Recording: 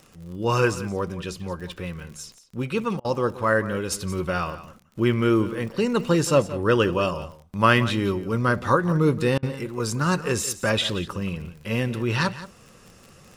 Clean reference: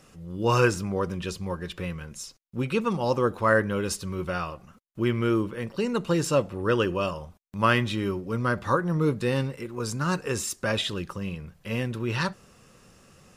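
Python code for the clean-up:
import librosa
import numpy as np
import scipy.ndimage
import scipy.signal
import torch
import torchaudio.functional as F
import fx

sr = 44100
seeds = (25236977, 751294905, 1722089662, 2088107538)

y = fx.fix_declick_ar(x, sr, threshold=6.5)
y = fx.fix_interpolate(y, sr, at_s=(3.0, 9.38), length_ms=46.0)
y = fx.fix_echo_inverse(y, sr, delay_ms=175, level_db=-15.0)
y = fx.fix_level(y, sr, at_s=3.92, step_db=-4.0)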